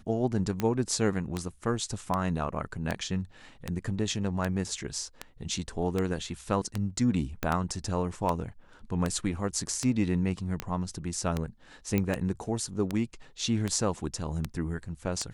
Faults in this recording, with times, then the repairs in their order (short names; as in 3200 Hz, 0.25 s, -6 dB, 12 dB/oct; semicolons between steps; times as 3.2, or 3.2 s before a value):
tick 78 rpm -15 dBFS
7.43 pop -15 dBFS
11.98 pop -14 dBFS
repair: de-click